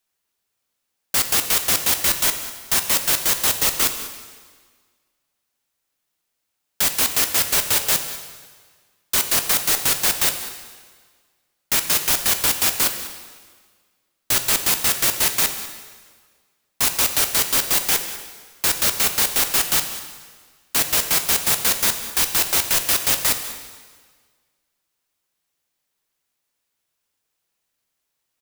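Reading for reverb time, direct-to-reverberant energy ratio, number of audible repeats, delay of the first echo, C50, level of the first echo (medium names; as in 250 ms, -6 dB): 1.6 s, 6.5 dB, 1, 196 ms, 8.5 dB, -16.5 dB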